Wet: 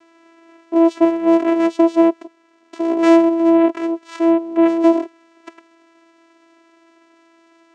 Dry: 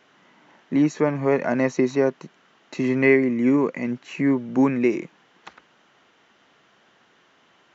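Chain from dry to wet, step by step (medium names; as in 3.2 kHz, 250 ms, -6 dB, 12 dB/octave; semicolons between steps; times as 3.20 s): Chebyshev shaper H 4 -12 dB, 5 -13 dB, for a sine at -5 dBFS; 2.22–2.98 s: ring modulator 84 Hz -> 26 Hz; vocoder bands 4, saw 332 Hz; trim +2 dB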